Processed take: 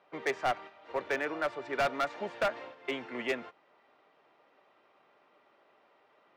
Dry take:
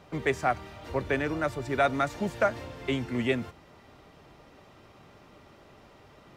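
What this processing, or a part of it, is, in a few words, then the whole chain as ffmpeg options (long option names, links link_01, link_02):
walkie-talkie: -af "highpass=480,lowpass=2900,asoftclip=type=hard:threshold=-24.5dB,agate=range=-8dB:threshold=-45dB:ratio=16:detection=peak"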